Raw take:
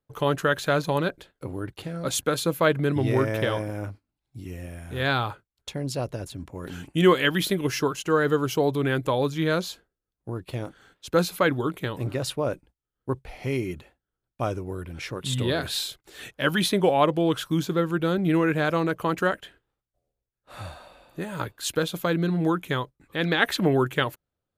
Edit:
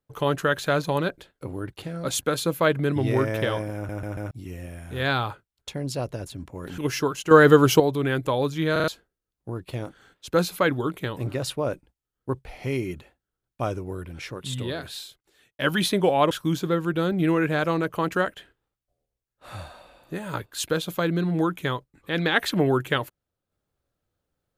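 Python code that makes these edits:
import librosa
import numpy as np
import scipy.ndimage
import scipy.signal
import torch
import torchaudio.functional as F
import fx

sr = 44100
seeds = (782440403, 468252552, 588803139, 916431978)

y = fx.edit(x, sr, fx.stutter_over(start_s=3.75, slice_s=0.14, count=4),
    fx.cut(start_s=6.78, length_s=0.8),
    fx.clip_gain(start_s=8.11, length_s=0.49, db=8.5),
    fx.stutter_over(start_s=9.52, slice_s=0.04, count=4),
    fx.fade_out_span(start_s=14.75, length_s=1.64),
    fx.cut(start_s=17.11, length_s=0.26), tone=tone)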